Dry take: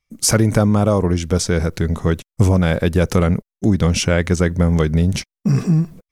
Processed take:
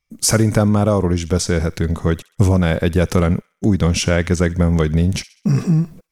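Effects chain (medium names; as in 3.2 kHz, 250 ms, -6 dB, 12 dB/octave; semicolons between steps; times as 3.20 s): feedback echo behind a high-pass 65 ms, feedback 43%, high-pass 1.6 kHz, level -18 dB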